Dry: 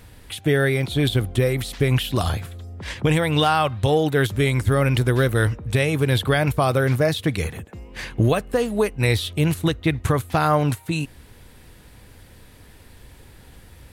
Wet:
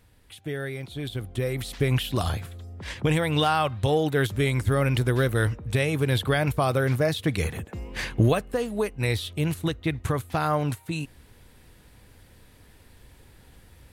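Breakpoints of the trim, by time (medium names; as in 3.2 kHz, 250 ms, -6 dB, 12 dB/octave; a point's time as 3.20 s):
1.07 s -13 dB
1.71 s -4 dB
7.19 s -4 dB
7.87 s +3.5 dB
8.57 s -6 dB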